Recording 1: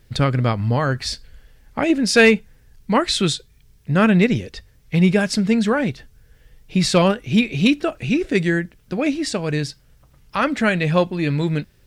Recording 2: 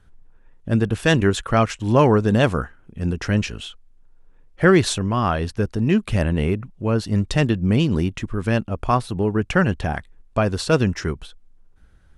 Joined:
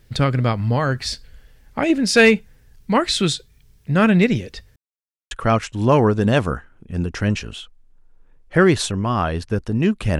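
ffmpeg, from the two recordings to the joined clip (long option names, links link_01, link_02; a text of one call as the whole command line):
ffmpeg -i cue0.wav -i cue1.wav -filter_complex "[0:a]apad=whole_dur=10.19,atrim=end=10.19,asplit=2[link_01][link_02];[link_01]atrim=end=4.76,asetpts=PTS-STARTPTS,afade=type=out:start_time=4.756:duration=0.004:curve=hsin[link_03];[link_02]atrim=start=4.76:end=5.31,asetpts=PTS-STARTPTS,volume=0[link_04];[1:a]atrim=start=1.38:end=6.26,asetpts=PTS-STARTPTS,afade=type=in:duration=0.004:curve=hsin[link_05];[link_03][link_04][link_05]concat=n=3:v=0:a=1" out.wav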